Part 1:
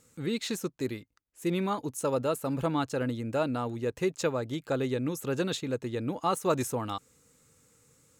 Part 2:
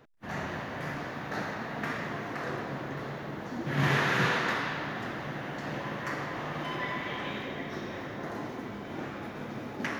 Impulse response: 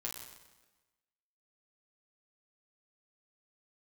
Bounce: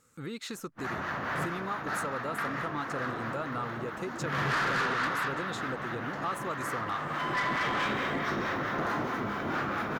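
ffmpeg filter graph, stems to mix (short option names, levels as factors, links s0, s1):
-filter_complex "[0:a]acompressor=threshold=0.0141:ratio=3,volume=0.531,asplit=2[s0][s1];[1:a]acrossover=split=790[s2][s3];[s2]aeval=exprs='val(0)*(1-0.5/2+0.5/2*cos(2*PI*4.6*n/s))':c=same[s4];[s3]aeval=exprs='val(0)*(1-0.5/2-0.5/2*cos(2*PI*4.6*n/s))':c=same[s5];[s4][s5]amix=inputs=2:normalize=0,adelay=550,volume=1.33[s6];[s1]apad=whole_len=469286[s7];[s6][s7]sidechaincompress=threshold=0.00447:ratio=8:attack=16:release=1090[s8];[s0][s8]amix=inputs=2:normalize=0,equalizer=f=1300:w=1.7:g=10.5,dynaudnorm=f=120:g=3:m=1.78,asoftclip=type=tanh:threshold=0.0631"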